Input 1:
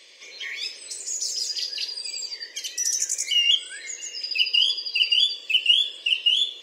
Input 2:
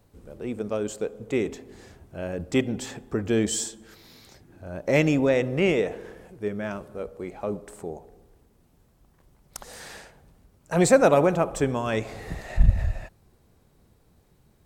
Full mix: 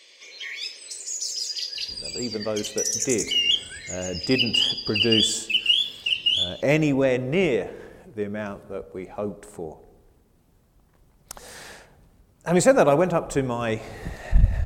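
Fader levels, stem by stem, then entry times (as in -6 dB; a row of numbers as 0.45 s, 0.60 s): -1.5 dB, +0.5 dB; 0.00 s, 1.75 s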